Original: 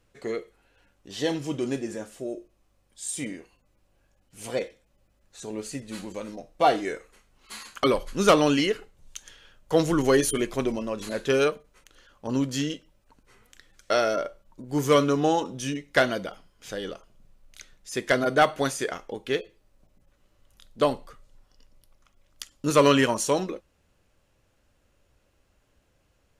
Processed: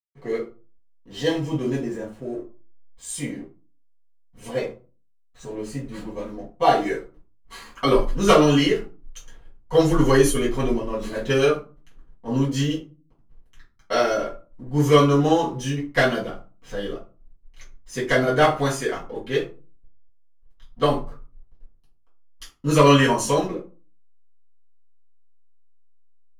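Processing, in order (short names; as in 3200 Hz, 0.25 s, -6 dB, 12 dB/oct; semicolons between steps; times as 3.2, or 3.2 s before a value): backlash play -44 dBFS; reverb RT60 0.35 s, pre-delay 4 ms, DRR -8.5 dB; mismatched tape noise reduction decoder only; gain -7 dB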